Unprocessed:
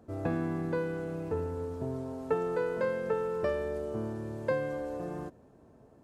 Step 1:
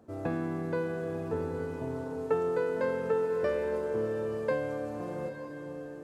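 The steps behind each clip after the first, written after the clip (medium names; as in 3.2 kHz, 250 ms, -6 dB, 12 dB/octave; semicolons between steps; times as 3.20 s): high-pass 120 Hz 6 dB/octave; swelling reverb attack 920 ms, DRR 5.5 dB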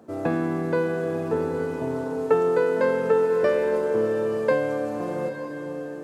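high-pass 150 Hz 12 dB/octave; trim +8.5 dB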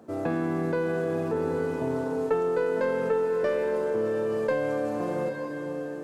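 tracing distortion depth 0.028 ms; in parallel at -3 dB: compressor with a negative ratio -27 dBFS; on the sum: trim -6.5 dB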